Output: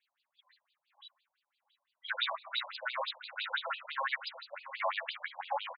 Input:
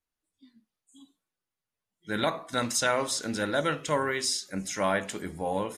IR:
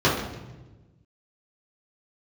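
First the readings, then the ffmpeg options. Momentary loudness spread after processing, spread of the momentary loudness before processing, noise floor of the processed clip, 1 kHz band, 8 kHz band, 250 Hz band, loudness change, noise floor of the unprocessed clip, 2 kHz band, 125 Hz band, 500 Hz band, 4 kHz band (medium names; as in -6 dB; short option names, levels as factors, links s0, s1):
14 LU, 7 LU, under -85 dBFS, -5.5 dB, under -40 dB, under -40 dB, -8.0 dB, under -85 dBFS, -4.0 dB, under -40 dB, -14.5 dB, -3.5 dB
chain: -filter_complex "[0:a]aemphasis=mode=production:type=riaa,acrossover=split=200[s0][s1];[s1]acompressor=threshold=0.0178:ratio=6[s2];[s0][s2]amix=inputs=2:normalize=0,aeval=exprs='0.0794*(cos(1*acos(clip(val(0)/0.0794,-1,1)))-cos(1*PI/2))+0.0251*(cos(5*acos(clip(val(0)/0.0794,-1,1)))-cos(5*PI/2))+0.00447*(cos(8*acos(clip(val(0)/0.0794,-1,1)))-cos(8*PI/2))':c=same,asplit=2[s3][s4];[s4]adelay=682,lowpass=f=1000:p=1,volume=0.282,asplit=2[s5][s6];[s6]adelay=682,lowpass=f=1000:p=1,volume=0.41,asplit=2[s7][s8];[s8]adelay=682,lowpass=f=1000:p=1,volume=0.41,asplit=2[s9][s10];[s10]adelay=682,lowpass=f=1000:p=1,volume=0.41[s11];[s3][s5][s7][s9][s11]amix=inputs=5:normalize=0,afftfilt=real='re*between(b*sr/1024,720*pow(3500/720,0.5+0.5*sin(2*PI*5.9*pts/sr))/1.41,720*pow(3500/720,0.5+0.5*sin(2*PI*5.9*pts/sr))*1.41)':imag='im*between(b*sr/1024,720*pow(3500/720,0.5+0.5*sin(2*PI*5.9*pts/sr))/1.41,720*pow(3500/720,0.5+0.5*sin(2*PI*5.9*pts/sr))*1.41)':win_size=1024:overlap=0.75,volume=1.58"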